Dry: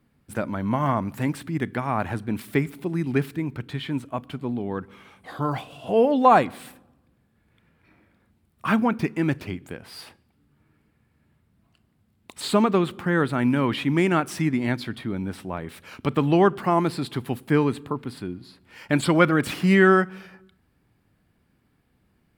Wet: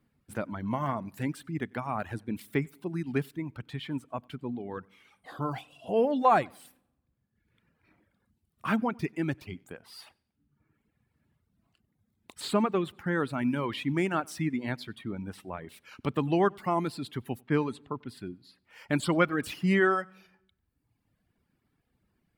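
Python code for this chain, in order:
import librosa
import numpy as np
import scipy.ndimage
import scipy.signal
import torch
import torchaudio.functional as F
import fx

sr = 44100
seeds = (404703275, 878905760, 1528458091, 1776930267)

y = fx.echo_feedback(x, sr, ms=94, feedback_pct=33, wet_db=-18)
y = fx.env_lowpass(y, sr, base_hz=2900.0, full_db=-16.0, at=(17.41, 18.09))
y = fx.dereverb_blind(y, sr, rt60_s=1.1)
y = F.gain(torch.from_numpy(y), -6.0).numpy()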